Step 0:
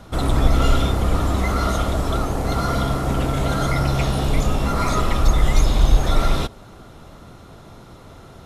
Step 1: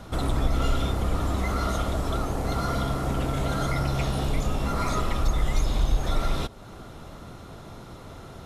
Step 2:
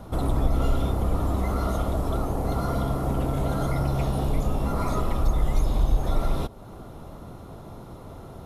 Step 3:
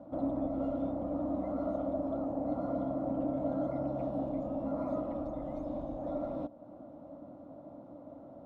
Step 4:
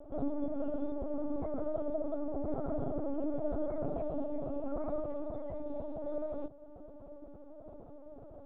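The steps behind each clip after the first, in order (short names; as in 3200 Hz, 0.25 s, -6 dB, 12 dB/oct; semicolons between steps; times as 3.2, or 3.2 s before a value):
compressor 1.5:1, threshold -33 dBFS, peak gain reduction 9 dB
band shelf 3400 Hz -8.5 dB 2.9 oct; gain +1.5 dB
double band-pass 410 Hz, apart 1 oct; gain +2.5 dB
LPC vocoder at 8 kHz pitch kept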